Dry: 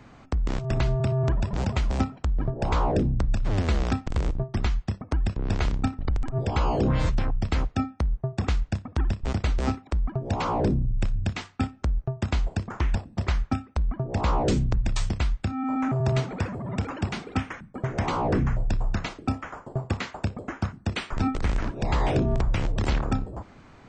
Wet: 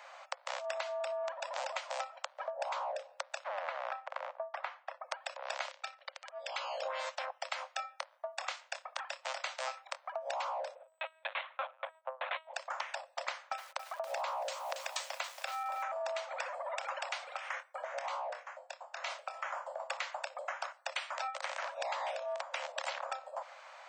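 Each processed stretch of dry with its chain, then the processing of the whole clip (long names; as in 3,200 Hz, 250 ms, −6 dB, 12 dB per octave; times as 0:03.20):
0:03.44–0:05.04: low-pass filter 1,200 Hz + tilt shelving filter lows −7 dB, about 880 Hz
0:05.71–0:06.82: low-pass filter 5,400 Hz + parametric band 820 Hz −13.5 dB 1.9 octaves
0:07.55–0:10.04: high-pass filter 700 Hz 6 dB per octave + double-tracking delay 25 ms −11.5 dB
0:10.75–0:12.54: high-frequency loss of the air 100 metres + comb filter 2.4 ms, depth 95% + linear-prediction vocoder at 8 kHz pitch kept
0:13.30–0:15.83: parametric band 98 Hz +6.5 dB 0.91 octaves + feedback echo at a low word length 278 ms, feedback 35%, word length 7 bits, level −11 dB
0:17.31–0:19.80: downward compressor 10 to 1, threshold −32 dBFS + double-tracking delay 25 ms −9.5 dB
whole clip: Chebyshev high-pass filter 530 Hz, order 8; downward compressor 10 to 1, threshold −38 dBFS; level +3.5 dB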